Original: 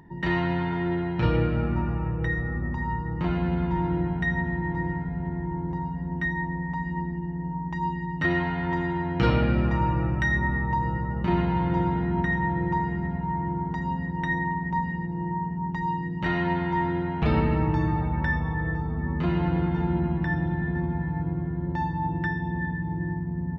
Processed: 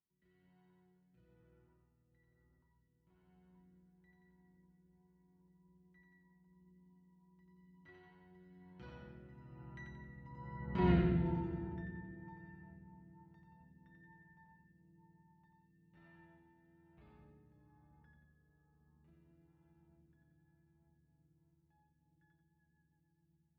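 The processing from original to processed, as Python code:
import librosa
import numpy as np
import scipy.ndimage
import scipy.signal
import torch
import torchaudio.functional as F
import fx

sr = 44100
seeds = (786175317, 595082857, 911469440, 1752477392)

y = fx.doppler_pass(x, sr, speed_mps=15, closest_m=1.1, pass_at_s=10.93)
y = fx.echo_split(y, sr, split_hz=490.0, low_ms=214, high_ms=89, feedback_pct=52, wet_db=-3)
y = fx.rotary_switch(y, sr, hz=1.1, then_hz=8.0, switch_at_s=22.1)
y = y * 10.0 ** (-3.5 / 20.0)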